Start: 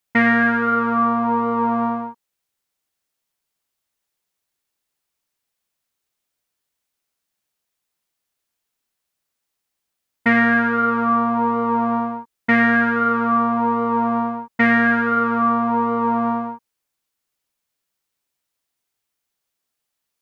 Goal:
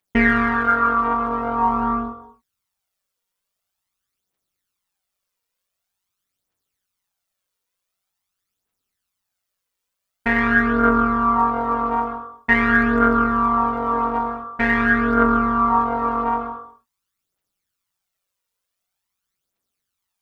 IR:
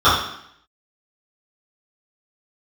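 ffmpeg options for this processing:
-filter_complex "[0:a]aphaser=in_gain=1:out_gain=1:delay=2.2:decay=0.62:speed=0.46:type=triangular,tremolo=f=190:d=0.75,asplit=2[a][b];[1:a]atrim=start_sample=2205,afade=t=out:st=0.21:d=0.01,atrim=end_sample=9702,adelay=113[c];[b][c]afir=irnorm=-1:irlink=0,volume=-35dB[d];[a][d]amix=inputs=2:normalize=0"

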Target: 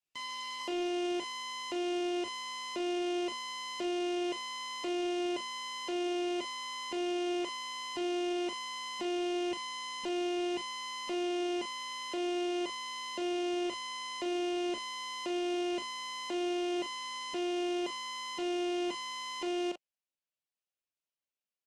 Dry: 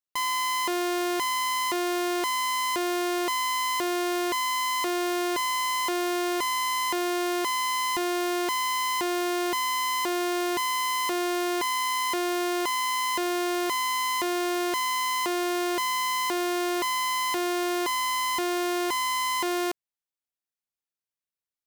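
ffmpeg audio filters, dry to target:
-filter_complex "[0:a]highpass=170,equalizer=f=580:t=q:w=4:g=9,equalizer=f=1.1k:t=q:w=4:g=-6,equalizer=f=1.7k:t=q:w=4:g=-3,equalizer=f=2.8k:t=q:w=4:g=9,lowpass=f=8k:w=0.5412,lowpass=f=8k:w=1.3066,asplit=2[a][b];[b]adelay=40,volume=-12dB[c];[a][c]amix=inputs=2:normalize=0,acrossover=split=410[d][e];[e]alimiter=level_in=1.5dB:limit=-24dB:level=0:latency=1,volume=-1.5dB[f];[d][f]amix=inputs=2:normalize=0,volume=-4.5dB" -ar 48000 -c:a libopus -b:a 16k

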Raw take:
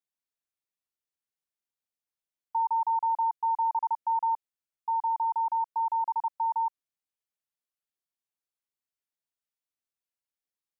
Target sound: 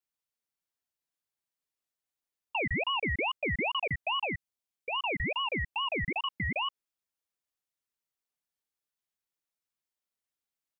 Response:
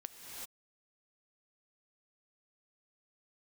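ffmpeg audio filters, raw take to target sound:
-filter_complex "[0:a]asplit=3[a][b][c];[a]afade=t=out:st=4.25:d=0.02[d];[b]highpass=f=900:w=0.5412,highpass=f=900:w=1.3066,afade=t=in:st=4.25:d=0.02,afade=t=out:st=4.91:d=0.02[e];[c]afade=t=in:st=4.91:d=0.02[f];[d][e][f]amix=inputs=3:normalize=0,aecho=1:1:6.2:0.84,aeval=exprs='val(0)*sin(2*PI*1500*n/s+1500*0.35/2.4*sin(2*PI*2.4*n/s))':c=same,volume=1.5dB"

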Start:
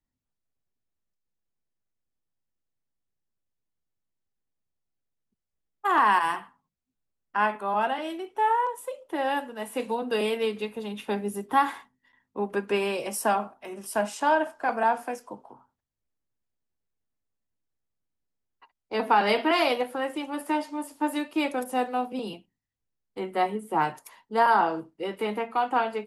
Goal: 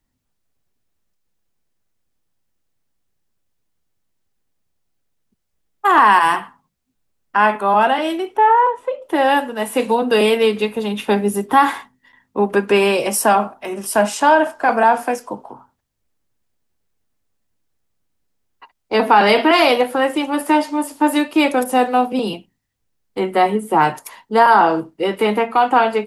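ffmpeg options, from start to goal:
-filter_complex "[0:a]asettb=1/sr,asplit=3[a][b][c];[a]atrim=end=8.374[d];[b]atrim=start=8.37:end=9.02,asetpts=PTS-STARTPTS,afade=t=in:d=0.004:c=qsin,afade=t=out:st=0.646:d=0.004:c=qsin,lowpass=2.4k[e];[c]atrim=start=9.016[f];[d][e]acrossfade=d=0.004:c1=hsin:c2=qsin[g];[g][f]acrossfade=d=0.004:c1=qsin:c2=hsin,asplit=2[h][i];[i]alimiter=limit=-19.5dB:level=0:latency=1:release=17,volume=2dB[j];[h][j]amix=inputs=2:normalize=0,volume=5.5dB"

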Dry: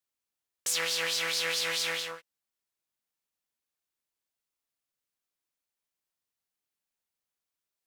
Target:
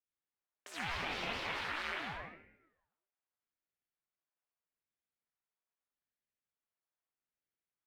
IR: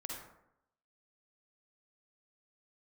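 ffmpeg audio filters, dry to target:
-filter_complex "[0:a]asplit=3[a][b][c];[a]afade=t=out:st=0.97:d=0.02[d];[b]afreqshift=-360,afade=t=in:st=0.97:d=0.02,afade=t=out:st=1.91:d=0.02[e];[c]afade=t=in:st=1.91:d=0.02[f];[d][e][f]amix=inputs=3:normalize=0,acrossover=split=340 2700:gain=0.2 1 0.0891[g][h][i];[g][h][i]amix=inputs=3:normalize=0[j];[1:a]atrim=start_sample=2205,asetrate=37044,aresample=44100[k];[j][k]afir=irnorm=-1:irlink=0,aeval=exprs='val(0)*sin(2*PI*510*n/s+510*0.85/0.8*sin(2*PI*0.8*n/s))':c=same"

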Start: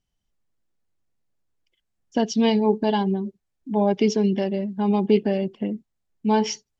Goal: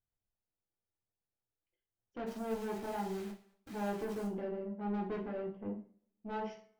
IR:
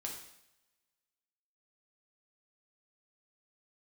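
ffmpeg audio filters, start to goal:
-filter_complex "[0:a]lowpass=1.4k,lowshelf=f=83:g=-8,bandreject=f=65.31:t=h:w=4,bandreject=f=130.62:t=h:w=4,bandreject=f=195.93:t=h:w=4,bandreject=f=261.24:t=h:w=4,bandreject=f=326.55:t=h:w=4,bandreject=f=391.86:t=h:w=4,bandreject=f=457.17:t=h:w=4,bandreject=f=522.48:t=h:w=4,bandreject=f=587.79:t=h:w=4,bandreject=f=653.1:t=h:w=4,bandreject=f=718.41:t=h:w=4,bandreject=f=783.72:t=h:w=4,bandreject=f=849.03:t=h:w=4,bandreject=f=914.34:t=h:w=4,bandreject=f=979.65:t=h:w=4,bandreject=f=1.04496k:t=h:w=4,bandreject=f=1.11027k:t=h:w=4,bandreject=f=1.17558k:t=h:w=4,bandreject=f=1.24089k:t=h:w=4,bandreject=f=1.3062k:t=h:w=4,bandreject=f=1.37151k:t=h:w=4,bandreject=f=1.43682k:t=h:w=4,bandreject=f=1.50213k:t=h:w=4,bandreject=f=1.56744k:t=h:w=4,bandreject=f=1.63275k:t=h:w=4,bandreject=f=1.69806k:t=h:w=4,bandreject=f=1.76337k:t=h:w=4,bandreject=f=1.82868k:t=h:w=4,bandreject=f=1.89399k:t=h:w=4,bandreject=f=1.9593k:t=h:w=4,bandreject=f=2.02461k:t=h:w=4,bandreject=f=2.08992k:t=h:w=4,bandreject=f=2.15523k:t=h:w=4,bandreject=f=2.22054k:t=h:w=4,asplit=3[a][b][c];[a]afade=t=out:st=2.26:d=0.02[d];[b]acrusher=bits=7:dc=4:mix=0:aa=0.000001,afade=t=in:st=2.26:d=0.02,afade=t=out:st=4.26:d=0.02[e];[c]afade=t=in:st=4.26:d=0.02[f];[d][e][f]amix=inputs=3:normalize=0,asoftclip=type=tanh:threshold=-23.5dB[g];[1:a]atrim=start_sample=2205,asetrate=88200,aresample=44100[h];[g][h]afir=irnorm=-1:irlink=0,volume=-3dB"

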